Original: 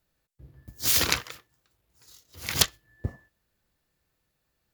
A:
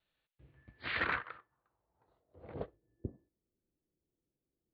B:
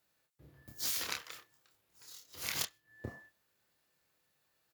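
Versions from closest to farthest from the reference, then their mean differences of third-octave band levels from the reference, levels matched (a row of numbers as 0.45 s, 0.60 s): B, A; 7.0 dB, 11.0 dB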